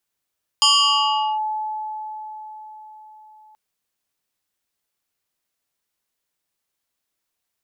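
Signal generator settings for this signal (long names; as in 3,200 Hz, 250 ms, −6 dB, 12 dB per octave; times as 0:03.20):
two-operator FM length 2.93 s, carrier 861 Hz, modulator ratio 2.32, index 3, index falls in 0.77 s linear, decay 4.86 s, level −11 dB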